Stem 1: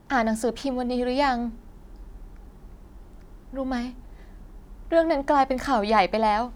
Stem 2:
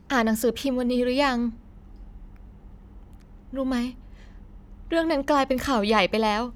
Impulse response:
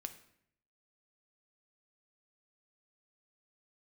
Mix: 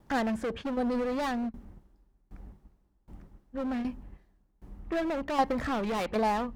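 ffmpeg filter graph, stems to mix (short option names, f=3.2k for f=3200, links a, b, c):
-filter_complex "[0:a]aeval=exprs='val(0)*pow(10,-25*if(lt(mod(1.3*n/s,1),2*abs(1.3)/1000),1-mod(1.3*n/s,1)/(2*abs(1.3)/1000),(mod(1.3*n/s,1)-2*abs(1.3)/1000)/(1-2*abs(1.3)/1000))/20)':c=same,volume=-6.5dB,asplit=2[a][b];[1:a]lowpass=2.3k,volume=27dB,asoftclip=hard,volume=-27dB,volume=-3dB[c];[b]apad=whole_len=289132[d];[c][d]sidechaingate=range=-33dB:threshold=-57dB:ratio=16:detection=peak[e];[a][e]amix=inputs=2:normalize=0"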